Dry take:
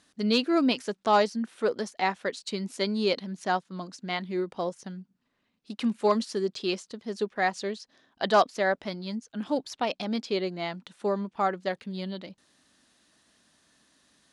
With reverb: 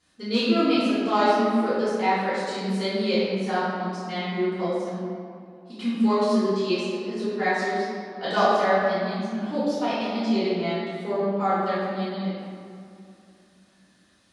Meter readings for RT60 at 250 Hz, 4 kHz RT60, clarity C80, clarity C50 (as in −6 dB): 3.5 s, 1.3 s, −1.0 dB, −3.0 dB